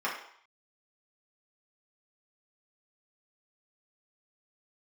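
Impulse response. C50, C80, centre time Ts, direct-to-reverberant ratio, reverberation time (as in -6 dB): 4.5 dB, 8.5 dB, 34 ms, -5.5 dB, 0.65 s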